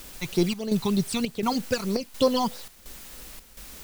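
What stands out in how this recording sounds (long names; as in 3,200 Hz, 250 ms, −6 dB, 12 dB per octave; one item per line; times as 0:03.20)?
phaser sweep stages 12, 3.2 Hz, lowest notch 500–2,800 Hz
a quantiser's noise floor 8 bits, dither triangular
chopped level 1.4 Hz, depth 65%, duty 75%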